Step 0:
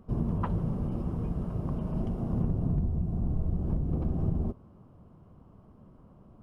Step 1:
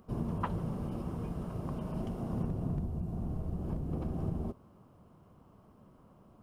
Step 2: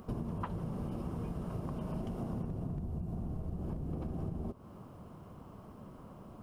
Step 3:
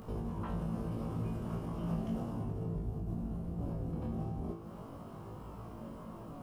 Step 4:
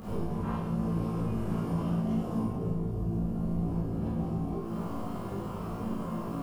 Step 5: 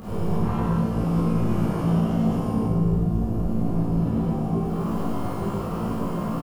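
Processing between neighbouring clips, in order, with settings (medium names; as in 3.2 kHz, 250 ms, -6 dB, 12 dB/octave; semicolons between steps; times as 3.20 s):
tilt EQ +2 dB/octave
compression 6:1, threshold -44 dBFS, peak gain reduction 15 dB; trim +8.5 dB
peak limiter -34.5 dBFS, peak gain reduction 9.5 dB; chorus 0.37 Hz, delay 20 ms, depth 6 ms; feedback comb 56 Hz, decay 0.53 s, harmonics all, mix 90%; trim +16.5 dB
compression, threshold -39 dBFS, peak gain reduction 8.5 dB; flange 0.51 Hz, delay 9.9 ms, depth 9 ms, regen +65%; Schroeder reverb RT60 0.64 s, combs from 32 ms, DRR -7 dB; trim +8 dB
loudspeakers at several distances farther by 35 m -1 dB, 74 m -1 dB; trim +4.5 dB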